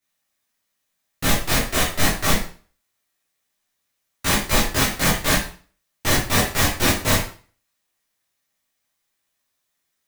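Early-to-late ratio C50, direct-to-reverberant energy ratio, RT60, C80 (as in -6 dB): 4.5 dB, -9.5 dB, 0.40 s, 9.0 dB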